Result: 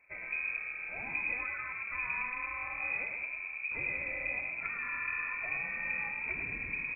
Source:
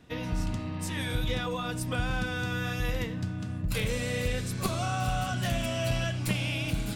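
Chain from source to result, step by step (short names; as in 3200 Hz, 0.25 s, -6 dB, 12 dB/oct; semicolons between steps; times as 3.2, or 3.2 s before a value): on a send: frequency-shifting echo 0.109 s, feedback 59%, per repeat -39 Hz, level -5 dB; on the sum: inverted band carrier 2500 Hz; gain -9 dB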